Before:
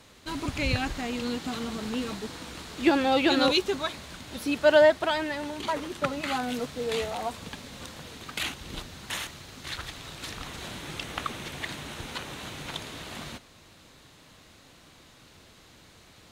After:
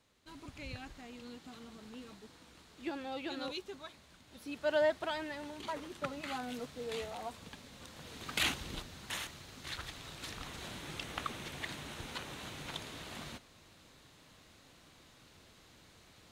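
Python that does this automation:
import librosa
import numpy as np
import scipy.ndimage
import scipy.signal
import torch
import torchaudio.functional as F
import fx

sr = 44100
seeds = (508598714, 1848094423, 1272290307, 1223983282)

y = fx.gain(x, sr, db=fx.line((4.24, -18.0), (4.93, -10.5), (7.85, -10.5), (8.5, 1.0), (8.82, -6.5)))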